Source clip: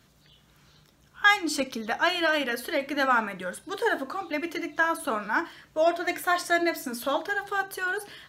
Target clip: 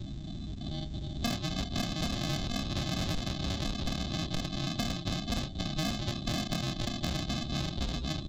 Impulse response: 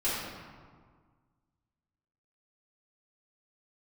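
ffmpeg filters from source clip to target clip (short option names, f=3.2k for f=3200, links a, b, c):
-filter_complex "[0:a]aeval=exprs='val(0)+0.5*0.0178*sgn(val(0))':c=same,lowshelf=f=73:g=6.5,aecho=1:1:520|1040|1560|2080:0.708|0.219|0.068|0.0211,aresample=16000,acrusher=samples=34:mix=1:aa=0.000001,aresample=44100,equalizer=f=3.7k:t=o:w=0.66:g=10,asplit=2[a][b];[b]adelay=29,volume=-11dB[c];[a][c]amix=inputs=2:normalize=0,acrossover=split=370|3200[d][e][f];[f]acontrast=88[g];[d][e][g]amix=inputs=3:normalize=0,afftdn=nr=17:nf=-36,asoftclip=type=tanh:threshold=-16dB,acompressor=threshold=-32dB:ratio=6,volume=1.5dB"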